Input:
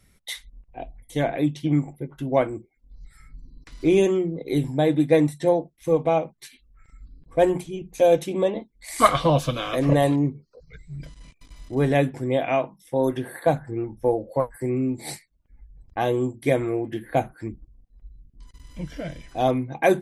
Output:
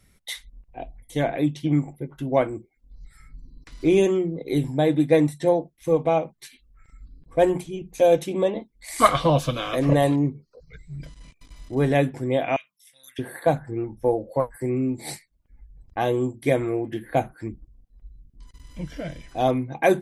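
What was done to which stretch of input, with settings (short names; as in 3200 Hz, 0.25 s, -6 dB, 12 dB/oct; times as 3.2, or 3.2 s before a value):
12.56–13.19 inverse Chebyshev high-pass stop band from 960 Hz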